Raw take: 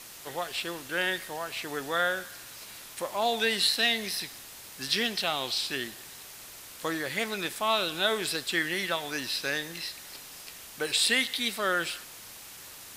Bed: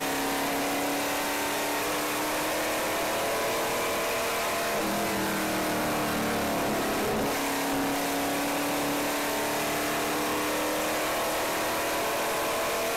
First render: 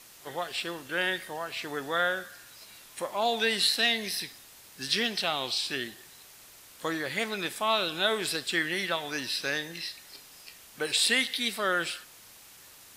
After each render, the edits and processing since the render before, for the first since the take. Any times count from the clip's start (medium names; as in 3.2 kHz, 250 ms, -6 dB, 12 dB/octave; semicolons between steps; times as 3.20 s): noise print and reduce 6 dB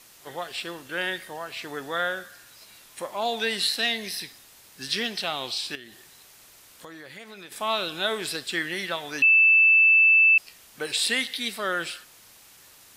5.75–7.52 s: compression 3:1, threshold -43 dBFS; 9.22–10.38 s: bleep 2.64 kHz -13.5 dBFS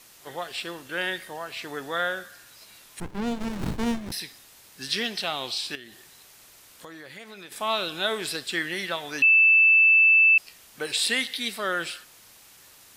3.00–4.12 s: sliding maximum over 65 samples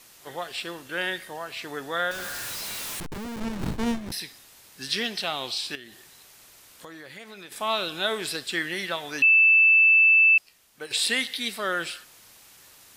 2.11–3.40 s: one-bit comparator; 10.15–10.91 s: upward expansion, over -35 dBFS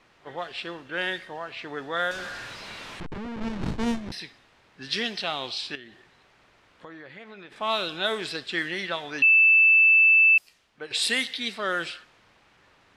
level-controlled noise filter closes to 2.1 kHz, open at -19 dBFS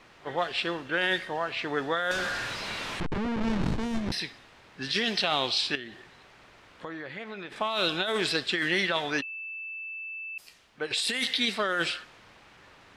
compressor with a negative ratio -30 dBFS, ratio -1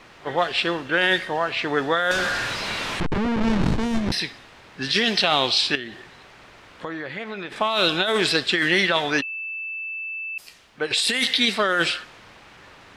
trim +7 dB